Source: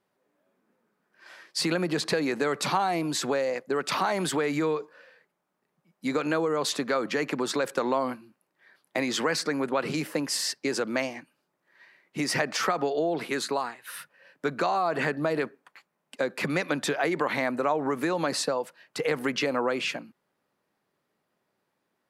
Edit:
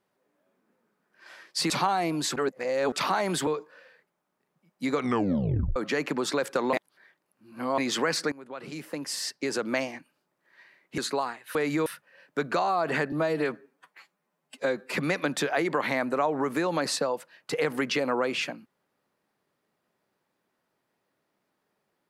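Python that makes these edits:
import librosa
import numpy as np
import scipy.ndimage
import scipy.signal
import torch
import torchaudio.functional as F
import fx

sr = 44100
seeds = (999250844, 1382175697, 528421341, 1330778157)

y = fx.edit(x, sr, fx.cut(start_s=1.7, length_s=0.91),
    fx.reverse_span(start_s=3.27, length_s=0.56),
    fx.move(start_s=4.38, length_s=0.31, to_s=13.93),
    fx.tape_stop(start_s=6.15, length_s=0.83),
    fx.reverse_span(start_s=7.95, length_s=1.05),
    fx.fade_in_from(start_s=9.54, length_s=1.41, floor_db=-21.5),
    fx.cut(start_s=12.2, length_s=1.16),
    fx.stretch_span(start_s=15.19, length_s=1.21, factor=1.5), tone=tone)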